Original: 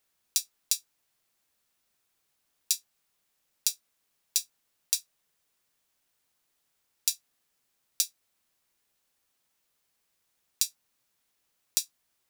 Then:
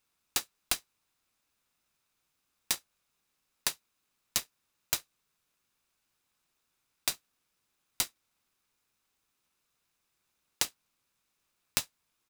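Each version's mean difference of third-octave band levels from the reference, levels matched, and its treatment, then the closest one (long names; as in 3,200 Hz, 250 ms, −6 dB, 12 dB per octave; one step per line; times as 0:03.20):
15.0 dB: comb filter 0.8 ms, depth 49%
short delay modulated by noise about 2,300 Hz, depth 0.032 ms
level −2.5 dB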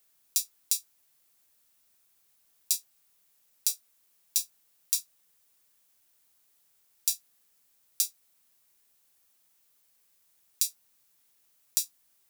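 2.0 dB: high-shelf EQ 7,200 Hz +10 dB
brickwall limiter −2.5 dBFS, peak gain reduction 8.5 dB
level +1 dB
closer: second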